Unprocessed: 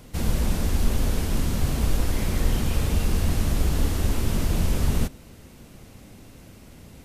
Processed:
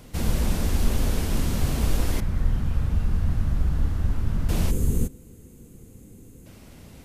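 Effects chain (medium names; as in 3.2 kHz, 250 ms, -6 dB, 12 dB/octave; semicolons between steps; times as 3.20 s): 2.20–4.49 s: FFT filter 140 Hz 0 dB, 400 Hz -11 dB, 1.5 kHz -5 dB, 2.3 kHz -12 dB, 8.6 kHz -18 dB; 4.71–6.46 s: time-frequency box 520–6200 Hz -13 dB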